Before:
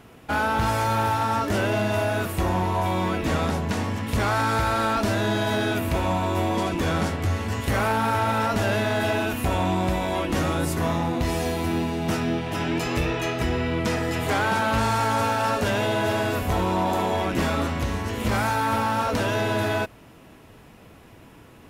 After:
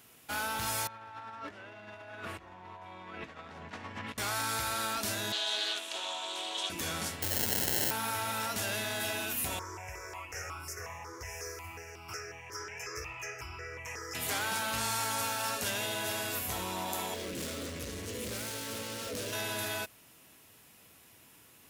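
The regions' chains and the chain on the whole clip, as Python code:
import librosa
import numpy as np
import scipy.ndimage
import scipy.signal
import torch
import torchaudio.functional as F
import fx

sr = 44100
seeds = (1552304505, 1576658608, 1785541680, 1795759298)

y = fx.chain(x, sr, fx.lowpass(hz=1800.0, slope=12),
    fx.over_compress(threshold_db=-29.0, ratio=-0.5),
    fx.tilt_shelf(db=-3.5, hz=690.0), at=(0.87, 4.18))
y = fx.chain(y, sr, fx.cabinet(low_hz=410.0, low_slope=24, high_hz=8000.0, hz=(490.0, 1100.0, 2100.0, 3300.0), db=(-6, -3, -8, 10)),
    fx.notch(hz=4700.0, q=12.0),
    fx.doppler_dist(depth_ms=0.13), at=(5.32, 6.7))
y = fx.chain(y, sr, fx.bass_treble(bass_db=-5, treble_db=12),
    fx.sample_hold(seeds[0], rate_hz=1200.0, jitter_pct=0),
    fx.env_flatten(amount_pct=100), at=(7.22, 7.91))
y = fx.chain(y, sr, fx.curve_eq(hz=(110.0, 210.0, 420.0, 610.0, 1200.0, 2600.0, 3800.0, 5400.0, 8800.0), db=(0, -23, 5, -8, 3, -2, -28, 7, -15)),
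    fx.phaser_held(hz=5.5, low_hz=720.0, high_hz=1800.0), at=(9.59, 14.15))
y = fx.chain(y, sr, fx.lowpass(hz=11000.0, slope=12),
    fx.overload_stage(gain_db=29.5),
    fx.low_shelf_res(hz=640.0, db=7.0, q=3.0), at=(17.14, 19.33))
y = scipy.signal.sosfilt(scipy.signal.butter(2, 64.0, 'highpass', fs=sr, output='sos'), y)
y = librosa.effects.preemphasis(y, coef=0.9, zi=[0.0])
y = y * 10.0 ** (3.0 / 20.0)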